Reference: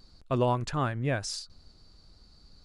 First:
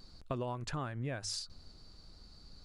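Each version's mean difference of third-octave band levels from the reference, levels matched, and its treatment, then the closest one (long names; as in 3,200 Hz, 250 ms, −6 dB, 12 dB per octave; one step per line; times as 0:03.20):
6.5 dB: mains-hum notches 50/100 Hz
downward compressor 16 to 1, threshold −35 dBFS, peak gain reduction 14.5 dB
level +1 dB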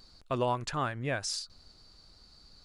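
3.0 dB: low-shelf EQ 440 Hz −8 dB
in parallel at −2.5 dB: downward compressor, threshold −39 dBFS, peak gain reduction 13.5 dB
on the sum: level −1.5 dB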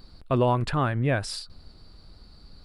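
2.0 dB: parametric band 6,400 Hz −15 dB 0.52 octaves
in parallel at +2.5 dB: brickwall limiter −25.5 dBFS, peak gain reduction 10 dB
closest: third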